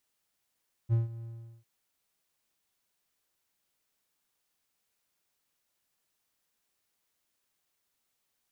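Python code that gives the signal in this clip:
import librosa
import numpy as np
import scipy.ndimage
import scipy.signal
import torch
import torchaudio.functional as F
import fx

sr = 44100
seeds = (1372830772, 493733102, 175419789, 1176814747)

y = fx.adsr_tone(sr, wave='triangle', hz=115.0, attack_ms=38.0, decay_ms=150.0, sustain_db=-17.5, held_s=0.35, release_ms=401.0, level_db=-19.0)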